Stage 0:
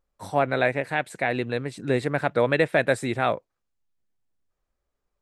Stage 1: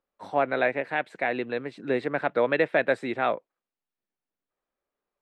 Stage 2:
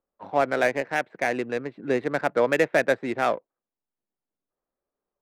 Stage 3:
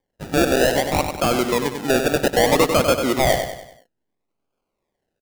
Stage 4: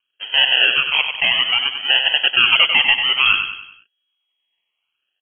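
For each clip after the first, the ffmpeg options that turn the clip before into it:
-filter_complex "[0:a]acrossover=split=190 4100:gain=0.112 1 0.1[a][b][c];[a][b][c]amix=inputs=3:normalize=0,volume=-1.5dB"
-af "adynamicsmooth=sensitivity=4:basefreq=1.4k,volume=2dB"
-af "acrusher=samples=33:mix=1:aa=0.000001:lfo=1:lforange=19.8:lforate=0.61,asoftclip=type=tanh:threshold=-19dB,aecho=1:1:96|192|288|384|480:0.447|0.201|0.0905|0.0407|0.0183,volume=8.5dB"
-af "lowpass=f=2.8k:t=q:w=0.5098,lowpass=f=2.8k:t=q:w=0.6013,lowpass=f=2.8k:t=q:w=0.9,lowpass=f=2.8k:t=q:w=2.563,afreqshift=-3300,volume=2.5dB"

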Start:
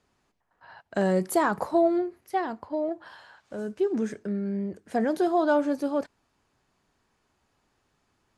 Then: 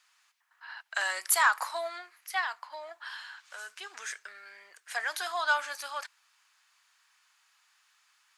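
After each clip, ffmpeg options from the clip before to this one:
-filter_complex "[0:a]highpass=f=1.1k:w=0.5412,highpass=f=1.1k:w=1.3066,acrossover=split=1600[a][b];[b]acontrast=30[c];[a][c]amix=inputs=2:normalize=0,volume=4.5dB"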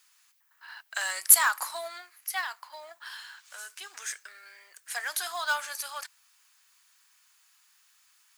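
-af "aemphasis=mode=production:type=bsi,acrusher=bits=5:mode=log:mix=0:aa=0.000001,volume=-2.5dB"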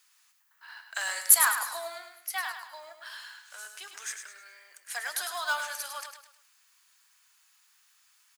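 -af "aecho=1:1:104|208|312|416:0.422|0.16|0.0609|0.0231,volume=-1.5dB"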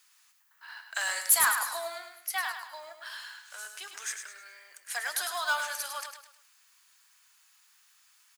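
-af "asoftclip=type=tanh:threshold=-17dB,volume=1.5dB"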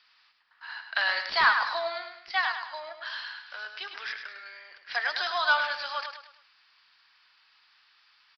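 -af "aresample=11025,aresample=44100,volume=5.5dB"

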